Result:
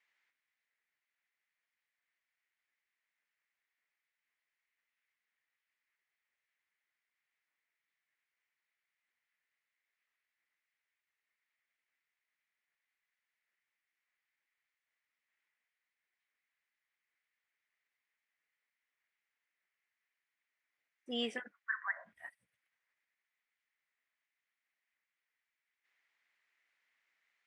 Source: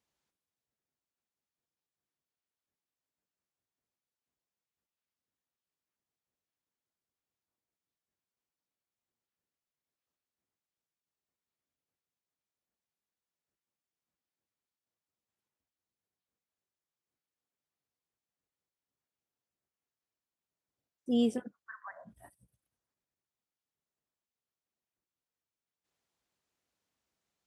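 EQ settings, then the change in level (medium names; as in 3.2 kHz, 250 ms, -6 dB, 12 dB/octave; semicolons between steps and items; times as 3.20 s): band-pass filter 2 kHz, Q 4.6; +18.0 dB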